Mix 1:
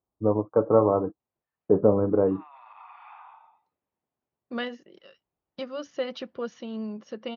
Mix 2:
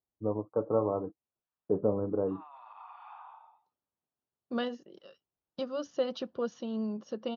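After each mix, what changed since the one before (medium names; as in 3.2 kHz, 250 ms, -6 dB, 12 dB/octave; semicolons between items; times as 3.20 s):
first voice -8.5 dB; master: add peaking EQ 2.1 kHz -13 dB 0.64 oct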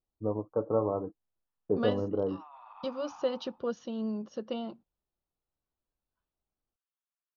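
second voice: entry -2.75 s; master: remove high-pass 80 Hz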